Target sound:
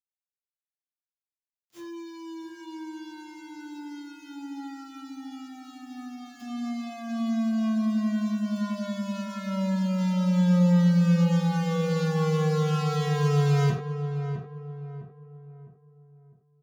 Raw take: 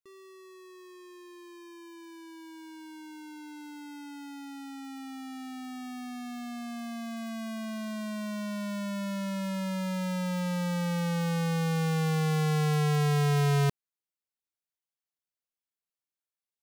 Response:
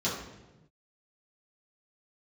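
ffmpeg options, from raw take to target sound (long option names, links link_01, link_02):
-filter_complex "[0:a]acrusher=bits=7:mix=0:aa=0.000001,asplit=2[link_01][link_02];[link_02]adelay=656,lowpass=frequency=1300:poles=1,volume=-8dB,asplit=2[link_03][link_04];[link_04]adelay=656,lowpass=frequency=1300:poles=1,volume=0.4,asplit=2[link_05][link_06];[link_06]adelay=656,lowpass=frequency=1300:poles=1,volume=0.4,asplit=2[link_07][link_08];[link_08]adelay=656,lowpass=frequency=1300:poles=1,volume=0.4,asplit=2[link_09][link_10];[link_10]adelay=656,lowpass=frequency=1300:poles=1,volume=0.4[link_11];[link_01][link_03][link_05][link_07][link_09][link_11]amix=inputs=6:normalize=0[link_12];[1:a]atrim=start_sample=2205,afade=type=out:start_time=0.16:duration=0.01,atrim=end_sample=7497[link_13];[link_12][link_13]afir=irnorm=-1:irlink=0,volume=-8dB"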